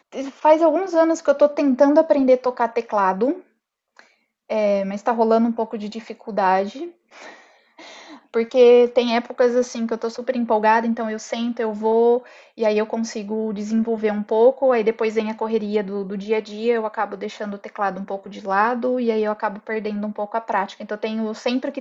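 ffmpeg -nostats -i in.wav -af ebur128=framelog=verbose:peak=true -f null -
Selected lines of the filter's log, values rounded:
Integrated loudness:
  I:         -20.4 LUFS
  Threshold: -30.9 LUFS
Loudness range:
  LRA:         5.4 LU
  Threshold: -41.1 LUFS
  LRA low:   -23.9 LUFS
  LRA high:  -18.5 LUFS
True peak:
  Peak:       -3.2 dBFS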